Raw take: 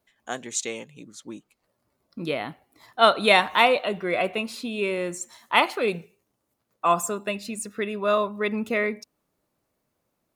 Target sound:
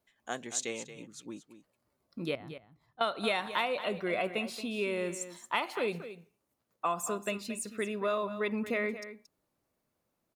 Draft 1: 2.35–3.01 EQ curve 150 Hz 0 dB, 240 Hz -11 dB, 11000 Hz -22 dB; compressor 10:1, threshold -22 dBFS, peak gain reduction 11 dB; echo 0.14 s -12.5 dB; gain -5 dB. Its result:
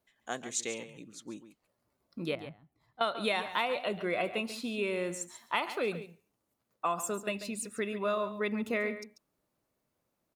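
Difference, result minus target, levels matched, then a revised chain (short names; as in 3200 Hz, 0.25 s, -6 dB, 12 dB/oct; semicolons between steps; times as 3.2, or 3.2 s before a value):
echo 87 ms early
2.35–3.01 EQ curve 150 Hz 0 dB, 240 Hz -11 dB, 11000 Hz -22 dB; compressor 10:1, threshold -22 dBFS, peak gain reduction 11 dB; echo 0.227 s -12.5 dB; gain -5 dB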